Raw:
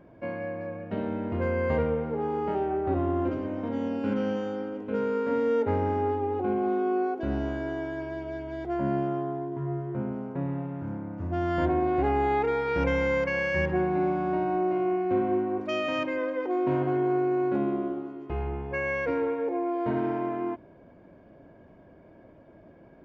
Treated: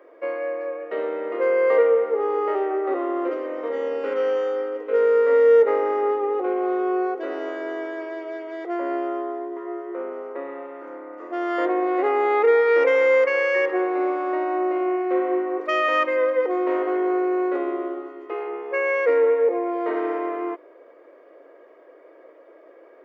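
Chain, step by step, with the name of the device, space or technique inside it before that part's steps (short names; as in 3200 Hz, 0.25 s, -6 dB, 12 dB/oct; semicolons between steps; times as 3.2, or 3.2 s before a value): Chebyshev high-pass 320 Hz, order 4; tilt +3 dB/oct; inside a helmet (high shelf 3900 Hz -9.5 dB; small resonant body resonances 480/1200/1900 Hz, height 14 dB, ringing for 25 ms); gain +2.5 dB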